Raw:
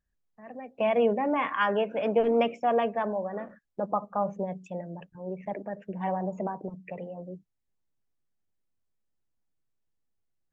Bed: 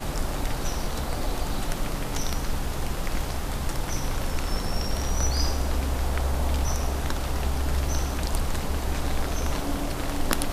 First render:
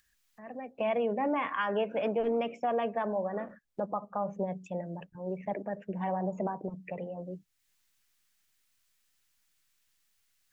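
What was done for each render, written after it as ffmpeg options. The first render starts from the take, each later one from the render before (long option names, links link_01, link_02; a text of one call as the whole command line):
ffmpeg -i in.wav -filter_complex "[0:a]acrossover=split=1400[link_01][link_02];[link_02]acompressor=mode=upward:threshold=-58dB:ratio=2.5[link_03];[link_01][link_03]amix=inputs=2:normalize=0,alimiter=limit=-21.5dB:level=0:latency=1:release=248" out.wav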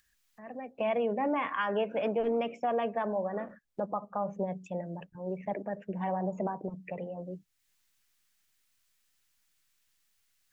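ffmpeg -i in.wav -af anull out.wav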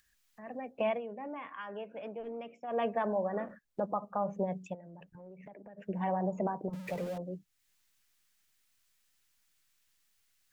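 ffmpeg -i in.wav -filter_complex "[0:a]asplit=3[link_01][link_02][link_03];[link_01]afade=type=out:start_time=4.73:duration=0.02[link_04];[link_02]acompressor=threshold=-47dB:ratio=10:attack=3.2:release=140:knee=1:detection=peak,afade=type=in:start_time=4.73:duration=0.02,afade=type=out:start_time=5.77:duration=0.02[link_05];[link_03]afade=type=in:start_time=5.77:duration=0.02[link_06];[link_04][link_05][link_06]amix=inputs=3:normalize=0,asettb=1/sr,asplit=3[link_07][link_08][link_09];[link_07]atrim=end=6.734[link_10];[link_08]atrim=start=6.73:end=7.18,asetpts=PTS-STARTPTS,afade=type=in:duration=0.004:curve=qsin,afade=type=out:start_time=0.446:duration=0.004:curve=qsin,aeval=exprs='val(0)+0.5*0.00794*sgn(val(0))':channel_layout=same[link_11];[link_09]atrim=start=7.176[link_12];[link_10][link_11]acrossfade=duration=0.004:curve1=hsin:curve2=qsin[link_13];[link_13][link_12]acrossfade=duration=0.004:curve1=qsin:curve2=hsin,asplit=3[link_14][link_15][link_16];[link_14]atrim=end=1.01,asetpts=PTS-STARTPTS,afade=type=out:start_time=0.87:duration=0.14:silence=0.251189[link_17];[link_15]atrim=start=1.01:end=2.67,asetpts=PTS-STARTPTS,volume=-12dB[link_18];[link_16]atrim=start=2.67,asetpts=PTS-STARTPTS,afade=type=in:duration=0.14:silence=0.251189[link_19];[link_17][link_18][link_19]concat=n=3:v=0:a=1" out.wav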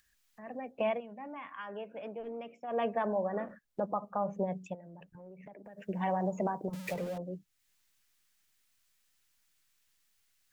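ffmpeg -i in.wav -filter_complex "[0:a]asettb=1/sr,asplit=3[link_01][link_02][link_03];[link_01]atrim=end=1.004[link_04];[link_02]atrim=start=1:end=1.59,asetpts=PTS-STARTPTS,afade=type=in:duration=0.004:curve=qsin,afade=type=out:start_time=0.586:duration=0.004:curve=qsin,equalizer=frequency=440:width_type=o:width=0.66:gain=-11[link_05];[link_03]atrim=start=1.586[link_06];[link_04][link_05]acrossfade=duration=0.004:curve1=hsin:curve2=qsin[link_07];[link_07][link_06]acrossfade=duration=0.004:curve1=qsin:curve2=hsin,asplit=3[link_08][link_09][link_10];[link_08]afade=type=out:start_time=5.64:duration=0.02[link_11];[link_09]highshelf=frequency=2500:gain=9.5,afade=type=in:start_time=5.64:duration=0.02,afade=type=out:start_time=6.92:duration=0.02[link_12];[link_10]afade=type=in:start_time=6.92:duration=0.02[link_13];[link_11][link_12][link_13]amix=inputs=3:normalize=0" out.wav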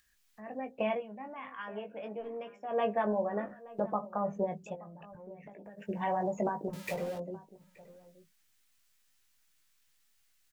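ffmpeg -i in.wav -filter_complex "[0:a]asplit=2[link_01][link_02];[link_02]adelay=19,volume=-6dB[link_03];[link_01][link_03]amix=inputs=2:normalize=0,asplit=2[link_04][link_05];[link_05]adelay=874.6,volume=-19dB,highshelf=frequency=4000:gain=-19.7[link_06];[link_04][link_06]amix=inputs=2:normalize=0" out.wav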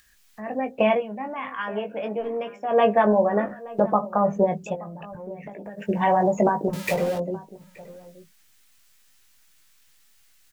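ffmpeg -i in.wav -af "volume=12dB" out.wav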